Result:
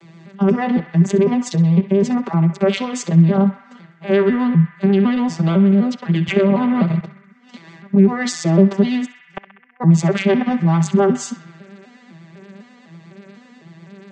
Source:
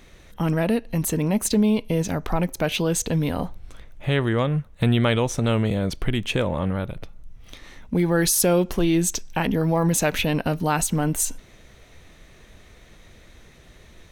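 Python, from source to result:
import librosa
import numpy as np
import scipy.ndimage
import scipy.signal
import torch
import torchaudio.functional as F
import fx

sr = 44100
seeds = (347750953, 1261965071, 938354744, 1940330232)

p1 = fx.vocoder_arp(x, sr, chord='minor triad', root=52, every_ms=252)
p2 = fx.vibrato(p1, sr, rate_hz=8.2, depth_cents=38.0)
p3 = fx.over_compress(p2, sr, threshold_db=-27.0, ratio=-0.5)
p4 = p2 + F.gain(torch.from_numpy(p3), -1.5).numpy()
p5 = fx.hum_notches(p4, sr, base_hz=50, count=3)
p6 = fx.gate_flip(p5, sr, shuts_db=-20.0, range_db=-40, at=(9.04, 9.8), fade=0.02)
p7 = p6 + 0.94 * np.pad(p6, (int(5.1 * sr / 1000.0), 0))[:len(p6)]
p8 = fx.echo_banded(p7, sr, ms=65, feedback_pct=82, hz=1800.0, wet_db=-11)
p9 = fx.band_squash(p8, sr, depth_pct=70, at=(6.28, 7.01))
y = F.gain(torch.from_numpy(p9), 1.5).numpy()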